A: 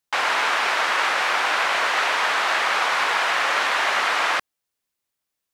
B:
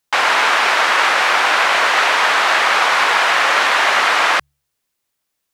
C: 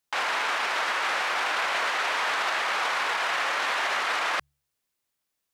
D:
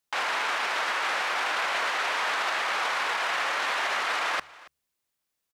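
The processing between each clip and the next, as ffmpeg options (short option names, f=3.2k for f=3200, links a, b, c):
-af "bandreject=f=70.95:t=h:w=4,bandreject=f=141.9:t=h:w=4,volume=7dB"
-af "alimiter=limit=-12dB:level=0:latency=1:release=28,volume=-6.5dB"
-af "aecho=1:1:279:0.0891,volume=-1dB"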